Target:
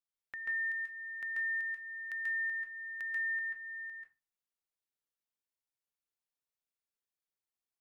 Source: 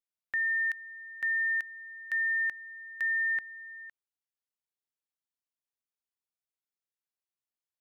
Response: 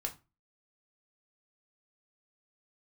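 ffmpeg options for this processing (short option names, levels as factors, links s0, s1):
-filter_complex "[0:a]acompressor=threshold=0.01:ratio=2.5,asplit=2[s0][s1];[1:a]atrim=start_sample=2205,adelay=137[s2];[s1][s2]afir=irnorm=-1:irlink=0,volume=1.06[s3];[s0][s3]amix=inputs=2:normalize=0,volume=0.501"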